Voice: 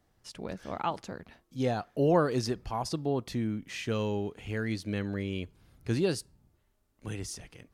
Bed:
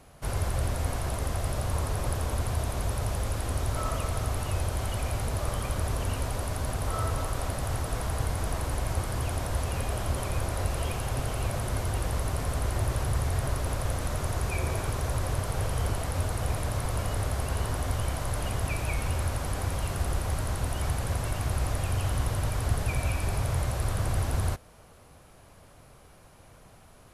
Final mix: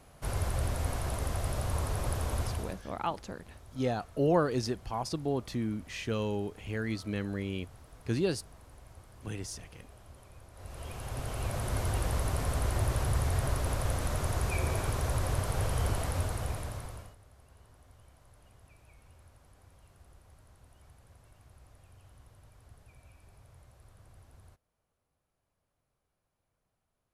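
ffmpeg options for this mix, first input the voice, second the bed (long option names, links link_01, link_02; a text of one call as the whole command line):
ffmpeg -i stem1.wav -i stem2.wav -filter_complex "[0:a]adelay=2200,volume=-1.5dB[link_01];[1:a]volume=19dB,afade=type=out:start_time=2.42:duration=0.4:silence=0.0944061,afade=type=in:start_time=10.53:duration=1.33:silence=0.0794328,afade=type=out:start_time=16.04:duration=1.12:silence=0.0421697[link_02];[link_01][link_02]amix=inputs=2:normalize=0" out.wav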